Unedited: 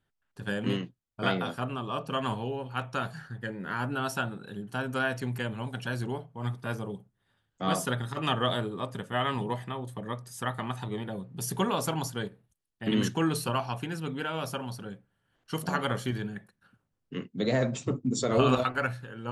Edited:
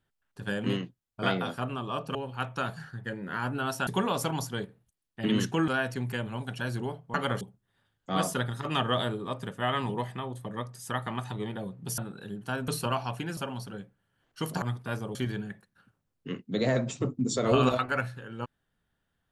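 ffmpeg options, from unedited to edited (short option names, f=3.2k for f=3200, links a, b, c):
-filter_complex "[0:a]asplit=11[a][b][c][d][e][f][g][h][i][j][k];[a]atrim=end=2.152[l];[b]atrim=start=2.518:end=4.242[m];[c]atrim=start=11.498:end=13.312[n];[d]atrim=start=4.938:end=6.402[o];[e]atrim=start=15.738:end=16.012[p];[f]atrim=start=6.928:end=11.502[q];[g]atrim=start=4.238:end=4.942[r];[h]atrim=start=13.308:end=14.002[s];[i]atrim=start=14.488:end=15.742[t];[j]atrim=start=6.398:end=6.932[u];[k]atrim=start=16.008[v];[l][m]acrossfade=d=0.004:c1=hsin:c2=hsin[w];[w][n]acrossfade=d=0.004:c1=hsin:c2=hsin[x];[x][o]acrossfade=d=0.004:c1=hsin:c2=hsin[y];[y][p]acrossfade=d=0.004:c1=hsin:c2=hsin[z];[z][q]acrossfade=d=0.004:c1=hsin:c2=hsin[aa];[aa][r]acrossfade=d=0.004:c1=hsin:c2=hsin[ab];[ab][s]acrossfade=d=0.004:c1=hsin:c2=hsin[ac];[ac][t]acrossfade=d=0.004:c1=hsin:c2=hsin[ad];[ad][u]acrossfade=d=0.004:c1=hsin:c2=hsin[ae];[ae][v]acrossfade=d=0.004:c1=hsin:c2=hsin"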